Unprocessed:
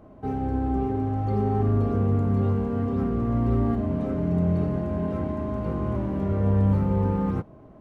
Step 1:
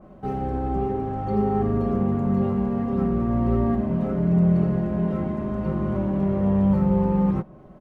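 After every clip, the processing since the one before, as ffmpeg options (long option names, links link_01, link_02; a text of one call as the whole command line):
ffmpeg -i in.wav -af "bandreject=frequency=370:width=12,aecho=1:1:5.4:0.71,adynamicequalizer=threshold=0.00282:dfrequency=2700:dqfactor=0.7:tfrequency=2700:tqfactor=0.7:attack=5:release=100:ratio=0.375:range=2.5:mode=cutabove:tftype=highshelf,volume=1.5dB" out.wav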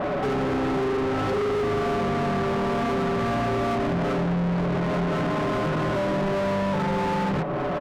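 ffmpeg -i in.wav -filter_complex "[0:a]aecho=1:1:7:0.82,acompressor=threshold=-31dB:ratio=4,asplit=2[link_01][link_02];[link_02]highpass=frequency=720:poles=1,volume=38dB,asoftclip=type=tanh:threshold=-22.5dB[link_03];[link_01][link_03]amix=inputs=2:normalize=0,lowpass=frequency=1800:poles=1,volume=-6dB,volume=4dB" out.wav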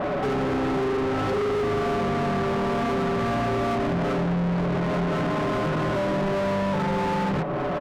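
ffmpeg -i in.wav -af anull out.wav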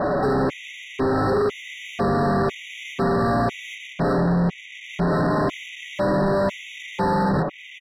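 ffmpeg -i in.wav -af "afftfilt=real='re*gt(sin(2*PI*1*pts/sr)*(1-2*mod(floor(b*sr/1024/1900),2)),0)':imag='im*gt(sin(2*PI*1*pts/sr)*(1-2*mod(floor(b*sr/1024/1900),2)),0)':win_size=1024:overlap=0.75,volume=4.5dB" out.wav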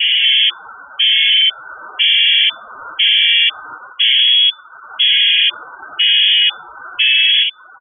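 ffmpeg -i in.wav -af "acontrast=79,afftdn=noise_reduction=25:noise_floor=-25,lowpass=frequency=3000:width_type=q:width=0.5098,lowpass=frequency=3000:width_type=q:width=0.6013,lowpass=frequency=3000:width_type=q:width=0.9,lowpass=frequency=3000:width_type=q:width=2.563,afreqshift=-3500,volume=2dB" out.wav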